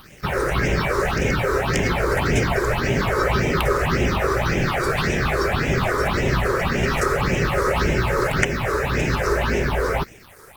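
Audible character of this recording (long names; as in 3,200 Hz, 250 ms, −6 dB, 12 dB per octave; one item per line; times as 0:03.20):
a quantiser's noise floor 8 bits, dither none
phaser sweep stages 6, 1.8 Hz, lowest notch 190–1,200 Hz
Opus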